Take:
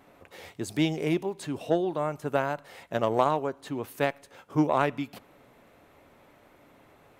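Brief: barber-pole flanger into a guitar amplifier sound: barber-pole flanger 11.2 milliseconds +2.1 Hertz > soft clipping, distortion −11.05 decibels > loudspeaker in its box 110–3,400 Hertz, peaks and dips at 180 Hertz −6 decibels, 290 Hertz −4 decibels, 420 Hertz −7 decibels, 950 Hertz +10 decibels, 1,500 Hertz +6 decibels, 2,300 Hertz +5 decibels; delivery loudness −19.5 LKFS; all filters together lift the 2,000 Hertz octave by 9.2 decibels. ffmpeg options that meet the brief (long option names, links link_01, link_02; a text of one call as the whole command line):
ffmpeg -i in.wav -filter_complex "[0:a]equalizer=frequency=2000:width_type=o:gain=5.5,asplit=2[link_01][link_02];[link_02]adelay=11.2,afreqshift=2.1[link_03];[link_01][link_03]amix=inputs=2:normalize=1,asoftclip=threshold=-23.5dB,highpass=110,equalizer=frequency=180:width_type=q:width=4:gain=-6,equalizer=frequency=290:width_type=q:width=4:gain=-4,equalizer=frequency=420:width_type=q:width=4:gain=-7,equalizer=frequency=950:width_type=q:width=4:gain=10,equalizer=frequency=1500:width_type=q:width=4:gain=6,equalizer=frequency=2300:width_type=q:width=4:gain=5,lowpass=frequency=3400:width=0.5412,lowpass=frequency=3400:width=1.3066,volume=13dB" out.wav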